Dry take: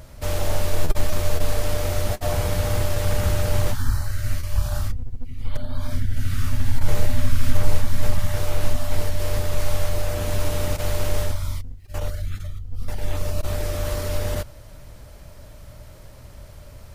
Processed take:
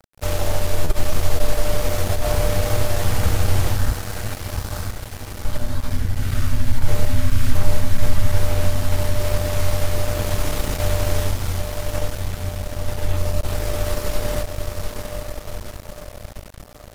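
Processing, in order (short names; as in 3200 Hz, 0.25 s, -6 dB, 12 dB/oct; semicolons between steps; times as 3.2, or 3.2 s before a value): diffused feedback echo 0.779 s, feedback 63%, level -6 dB; in parallel at -2 dB: compressor, threshold -22 dBFS, peak gain reduction 15 dB; 3.93–5.45 on the sum: low shelf 99 Hz -9.5 dB; crossover distortion -30 dBFS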